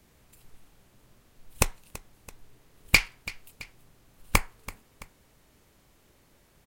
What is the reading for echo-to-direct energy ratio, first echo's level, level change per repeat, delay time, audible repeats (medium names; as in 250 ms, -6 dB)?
-17.0 dB, -18.0 dB, -5.5 dB, 333 ms, 2